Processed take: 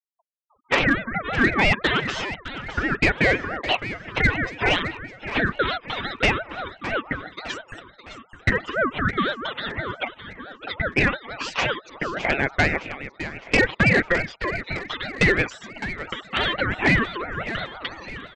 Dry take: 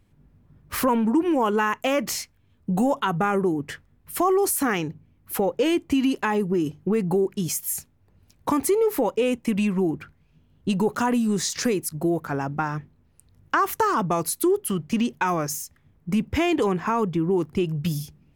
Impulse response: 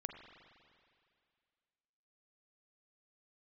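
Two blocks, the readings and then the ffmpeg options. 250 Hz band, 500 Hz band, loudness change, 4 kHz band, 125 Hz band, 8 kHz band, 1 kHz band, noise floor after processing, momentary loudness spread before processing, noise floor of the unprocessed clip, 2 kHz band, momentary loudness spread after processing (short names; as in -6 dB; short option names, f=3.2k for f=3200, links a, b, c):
-5.0 dB, -3.5 dB, +0.5 dB, +7.0 dB, +1.5 dB, -13.0 dB, -2.0 dB, -54 dBFS, 10 LU, -61 dBFS, +11.5 dB, 14 LU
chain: -filter_complex "[0:a]acompressor=threshold=-36dB:ratio=6,lowpass=5.3k,acrossover=split=420 3400:gain=0.0631 1 0.2[a][b][c];[a][b][c]amix=inputs=3:normalize=0,aecho=1:1:6.5:0.85,afftfilt=real='re*gte(hypot(re,im),0.00251)':imag='im*gte(hypot(re,im),0.00251)':win_size=1024:overlap=0.75,equalizer=f=1.5k:w=0.4:g=12.5,acontrast=84,aresample=16000,volume=15dB,asoftclip=hard,volume=-15dB,aresample=44100,aecho=1:1:611|1222|1833|2444|3055:0.251|0.123|0.0603|0.0296|0.0145,aeval=exprs='val(0)*sin(2*PI*890*n/s+890*0.25/5.9*sin(2*PI*5.9*n/s))':c=same,volume=5dB"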